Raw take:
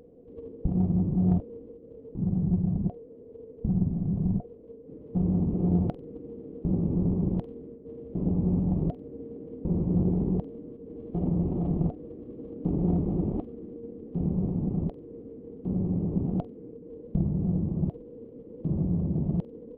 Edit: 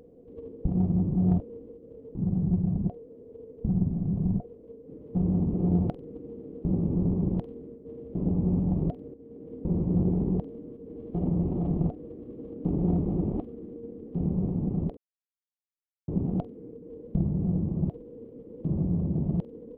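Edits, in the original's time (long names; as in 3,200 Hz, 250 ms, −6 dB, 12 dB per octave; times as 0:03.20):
0:09.14–0:09.56: fade in linear, from −13 dB
0:14.97–0:16.08: silence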